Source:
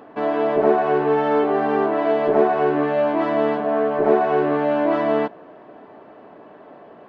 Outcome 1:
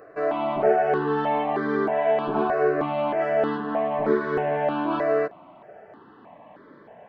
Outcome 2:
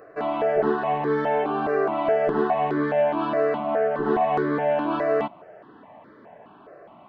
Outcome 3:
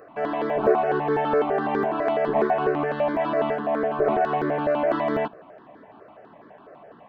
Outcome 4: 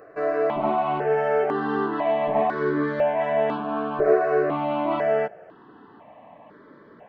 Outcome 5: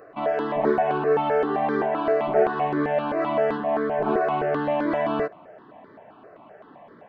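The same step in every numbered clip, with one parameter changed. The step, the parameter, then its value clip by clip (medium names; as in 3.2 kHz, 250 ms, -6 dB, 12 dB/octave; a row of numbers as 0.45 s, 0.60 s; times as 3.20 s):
stepped phaser, rate: 3.2 Hz, 4.8 Hz, 12 Hz, 2 Hz, 7.7 Hz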